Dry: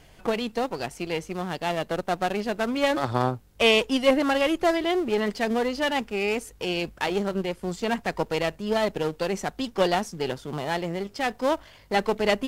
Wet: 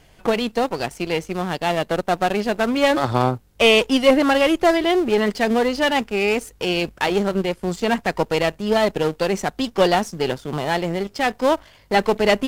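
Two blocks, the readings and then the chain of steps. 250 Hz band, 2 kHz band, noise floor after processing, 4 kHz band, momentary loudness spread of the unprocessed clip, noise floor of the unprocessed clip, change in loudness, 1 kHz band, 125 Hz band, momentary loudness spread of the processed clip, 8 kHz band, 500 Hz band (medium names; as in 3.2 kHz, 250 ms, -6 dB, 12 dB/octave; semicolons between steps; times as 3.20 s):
+6.0 dB, +6.0 dB, -52 dBFS, +5.5 dB, 8 LU, -53 dBFS, +6.0 dB, +6.0 dB, +6.0 dB, 8 LU, +5.5 dB, +6.0 dB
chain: waveshaping leveller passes 1; trim +2.5 dB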